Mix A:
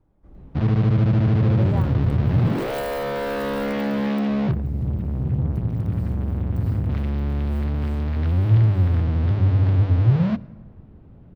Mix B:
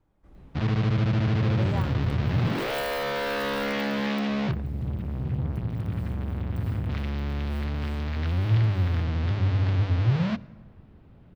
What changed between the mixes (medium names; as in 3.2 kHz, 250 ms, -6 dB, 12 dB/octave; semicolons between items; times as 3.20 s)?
second sound -6.5 dB; master: add tilt shelf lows -6 dB, about 1.2 kHz